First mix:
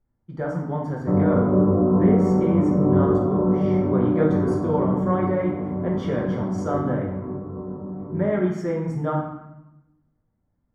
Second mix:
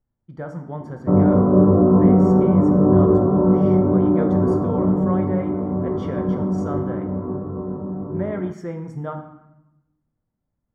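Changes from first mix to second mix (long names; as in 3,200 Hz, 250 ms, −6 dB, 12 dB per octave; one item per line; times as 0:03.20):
speech: send −9.0 dB
background +4.5 dB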